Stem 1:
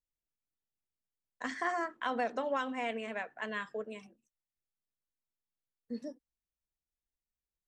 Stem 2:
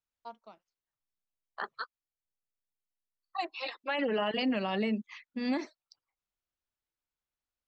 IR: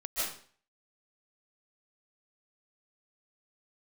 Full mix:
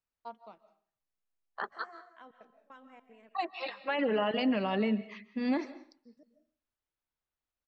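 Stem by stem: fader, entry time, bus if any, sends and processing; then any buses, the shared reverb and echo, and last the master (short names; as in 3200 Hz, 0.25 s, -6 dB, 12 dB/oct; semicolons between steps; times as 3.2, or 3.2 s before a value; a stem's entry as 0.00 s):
-19.0 dB, 0.15 s, send -13.5 dB, step gate "xx.x..xxx." 153 bpm -24 dB
+1.0 dB, 0.00 s, send -20 dB, dry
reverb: on, RT60 0.45 s, pre-delay 0.11 s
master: high shelf 4200 Hz -11.5 dB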